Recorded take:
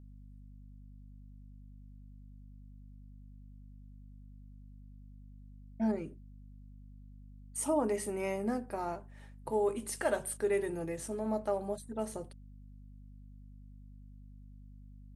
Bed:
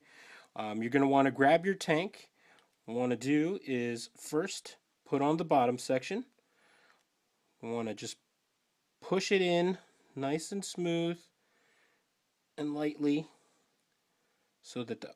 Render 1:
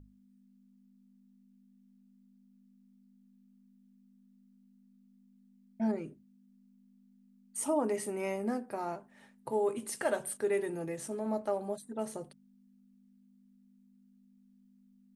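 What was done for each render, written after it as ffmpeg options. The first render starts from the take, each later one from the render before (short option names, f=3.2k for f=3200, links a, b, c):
-af "bandreject=f=50:t=h:w=6,bandreject=f=100:t=h:w=6,bandreject=f=150:t=h:w=6"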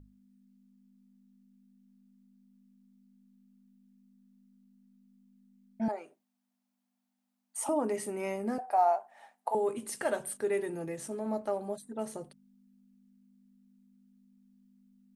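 -filter_complex "[0:a]asettb=1/sr,asplit=3[a][b][c];[a]atrim=end=5.884[d];[b]atrim=start=5.88:end=7.69,asetpts=PTS-STARTPTS,afade=t=in:d=0.004:c=qsin,afade=t=out:st=1.806:d=0.004:c=qsin,highpass=f=740:t=q:w=3.3[e];[c]atrim=start=7.686[f];[d][e]acrossfade=d=0.004:c1=hsin:c2=qsin[g];[g][f]acrossfade=d=0.004:c1=qsin:c2=hsin,asettb=1/sr,asplit=3[h][i][j];[h]atrim=end=8.584[k];[i]atrim=start=8.58:end=9.55,asetpts=PTS-STARTPTS,afade=t=in:d=0.004:c=qsin,afade=t=out:st=0.966:d=0.004:c=qsin,highpass=f=740:t=q:w=8.4[l];[j]atrim=start=9.546[m];[k][l]acrossfade=d=0.004:c1=hsin:c2=qsin[n];[n][m]acrossfade=d=0.004:c1=qsin:c2=hsin"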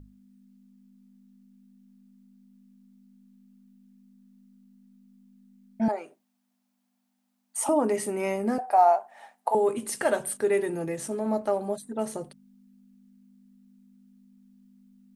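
-af "volume=6.5dB"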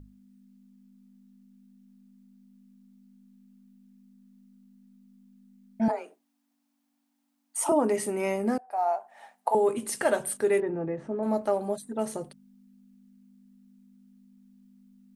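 -filter_complex "[0:a]asettb=1/sr,asplit=3[a][b][c];[a]atrim=end=5.904[d];[b]atrim=start=5.9:end=7.72,asetpts=PTS-STARTPTS,afade=t=in:d=0.004:c=qsin,afade=t=out:st=1.816:d=0.004:c=qsin,afreqshift=32[e];[c]atrim=start=7.716[f];[d][e]acrossfade=d=0.004:c1=hsin:c2=qsin[g];[g][f]acrossfade=d=0.004:c1=qsin:c2=hsin,asettb=1/sr,asplit=3[h][i][j];[h]atrim=end=10.604[k];[i]atrim=start=10.6:end=11.23,asetpts=PTS-STARTPTS,afade=t=in:d=0.004:c=qsin,afade=t=out:st=0.626:d=0.004:c=qsin,lowpass=1.4k[l];[j]atrim=start=11.226[m];[k][l]acrossfade=d=0.004:c1=hsin:c2=qsin[n];[n][m]acrossfade=d=0.004:c1=qsin:c2=hsin,asplit=2[o][p];[o]atrim=end=8.58,asetpts=PTS-STARTPTS,afade=t=out:st=8.576:d=0.004:c=hsin:silence=0.0891251[q];[p]atrim=start=8.58,asetpts=PTS-STARTPTS,afade=t=in:d=0.77:silence=0.0891251[r];[q][r]concat=n=2:v=0:a=1"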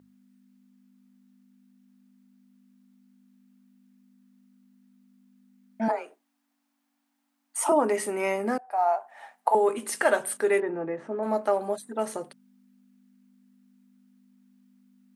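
-af "highpass=240,equalizer=f=1.5k:t=o:w=1.9:g=6"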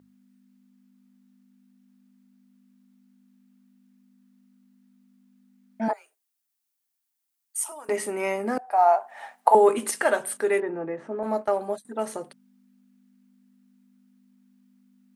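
-filter_complex "[0:a]asettb=1/sr,asplit=3[a][b][c];[a]atrim=end=5.934[d];[b]atrim=start=5.93:end=7.89,asetpts=PTS-STARTPTS,afade=t=in:d=0.004:c=qsin,afade=t=out:st=1.956:d=0.004:c=qsin,aderivative[e];[c]atrim=start=7.886[f];[d][e]acrossfade=d=0.004:c1=hsin:c2=qsin[g];[g][f]acrossfade=d=0.004:c1=qsin:c2=hsin,asettb=1/sr,asplit=3[h][i][j];[h]atrim=end=11.234[k];[i]atrim=start=11.23:end=11.85,asetpts=PTS-STARTPTS,afade=t=in:d=0.004:c=qsin,afade=t=out:st=0.616:d=0.004:c=qsin,agate=range=-33dB:threshold=-34dB:ratio=3:release=100:detection=peak[l];[j]atrim=start=11.846[m];[k][l]acrossfade=d=0.004:c1=hsin:c2=qsin[n];[n][m]acrossfade=d=0.004:c1=qsin:c2=hsin,asplit=3[o][p][q];[o]atrim=end=8.572[r];[p]atrim=start=8.568:end=9.912,asetpts=PTS-STARTPTS,volume=5.5dB[s];[q]atrim=start=9.908[t];[r][s]acrossfade=d=0.004:c1=hsin:c2=hsin[u];[u][t]acrossfade=d=0.004:c1=hsin:c2=hsin"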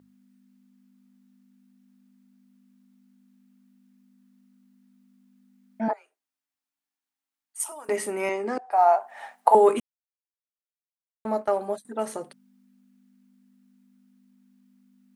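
-filter_complex "[0:a]asettb=1/sr,asplit=3[a][b][c];[a]atrim=end=5.814[d];[b]atrim=start=5.81:end=7.6,asetpts=PTS-STARTPTS,afade=t=in:d=0.004:c=qsin,afade=t=out:st=1.786:d=0.004:c=qsin,lowpass=f=2.3k:p=1[e];[c]atrim=start=7.596[f];[d][e]acrossfade=d=0.004:c1=hsin:c2=qsin[g];[g][f]acrossfade=d=0.004:c1=qsin:c2=hsin,asettb=1/sr,asplit=3[h][i][j];[h]atrim=end=8.294[k];[i]atrim=start=8.29:end=8.72,asetpts=PTS-STARTPTS,afade=t=in:d=0.004:c=qsin,afade=t=out:st=0.426:d=0.004:c=qsin,highpass=280,equalizer=f=360:t=q:w=4:g=6,equalizer=f=630:t=q:w=4:g=-6,equalizer=f=1.5k:t=q:w=4:g=-4,lowpass=f=7.7k:w=0.5412,lowpass=f=7.7k:w=1.3066[l];[j]atrim=start=8.716[m];[k][l]acrossfade=d=0.004:c1=hsin:c2=qsin[n];[n][m]acrossfade=d=0.004:c1=qsin:c2=hsin,asplit=3[o][p][q];[o]atrim=end=9.8,asetpts=PTS-STARTPTS,afade=t=out:st=9.796:d=0.004:c=hsin[r];[p]atrim=start=9.8:end=11.25,asetpts=PTS-STARTPTS,volume=0[s];[q]atrim=start=11.25,asetpts=PTS-STARTPTS,afade=t=in:d=0.004:c=hsin[t];[r][s][t]concat=n=3:v=0:a=1"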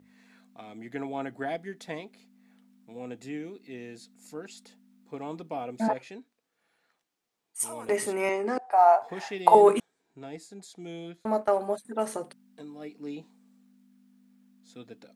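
-filter_complex "[1:a]volume=-8dB[a];[0:a][a]amix=inputs=2:normalize=0"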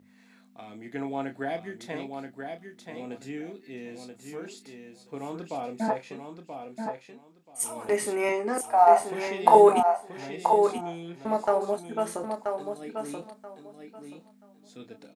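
-filter_complex "[0:a]asplit=2[a][b];[b]adelay=29,volume=-8dB[c];[a][c]amix=inputs=2:normalize=0,asplit=2[d][e];[e]aecho=0:1:981|1962|2943:0.501|0.0952|0.0181[f];[d][f]amix=inputs=2:normalize=0"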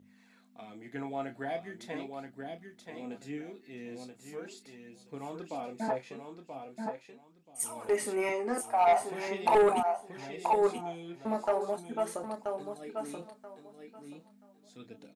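-af "flanger=delay=0.3:depth=8.6:regen=52:speed=0.4:shape=sinusoidal,asoftclip=type=tanh:threshold=-18dB"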